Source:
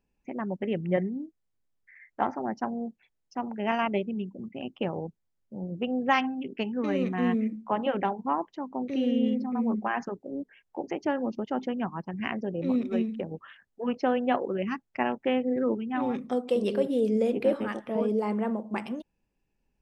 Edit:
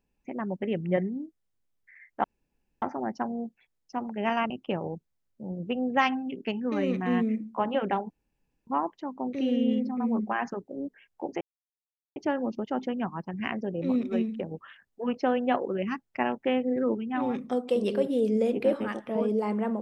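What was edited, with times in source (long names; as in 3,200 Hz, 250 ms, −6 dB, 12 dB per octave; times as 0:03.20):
0:02.24: splice in room tone 0.58 s
0:03.92–0:04.62: remove
0:08.22: splice in room tone 0.57 s
0:10.96: splice in silence 0.75 s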